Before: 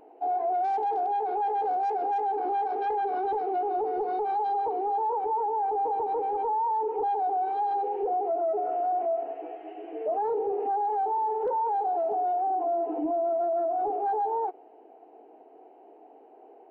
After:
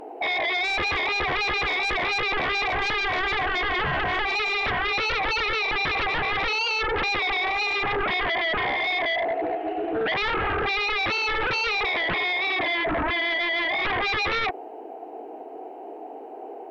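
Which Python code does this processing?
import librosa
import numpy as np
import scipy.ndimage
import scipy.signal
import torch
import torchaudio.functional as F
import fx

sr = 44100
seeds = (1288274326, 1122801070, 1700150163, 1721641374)

y = fx.lowpass(x, sr, hz=2400.0, slope=12, at=(11.84, 12.72))
y = fx.fold_sine(y, sr, drive_db=10, ceiling_db=-22.0)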